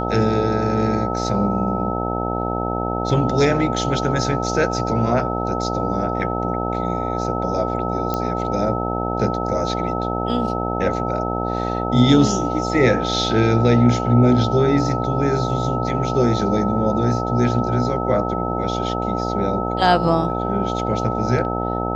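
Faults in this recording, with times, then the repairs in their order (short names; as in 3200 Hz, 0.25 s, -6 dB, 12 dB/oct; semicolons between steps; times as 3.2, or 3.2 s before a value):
buzz 60 Hz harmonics 15 -24 dBFS
tone 1300 Hz -26 dBFS
8.14 pop -9 dBFS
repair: de-click; notch 1300 Hz, Q 30; de-hum 60 Hz, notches 15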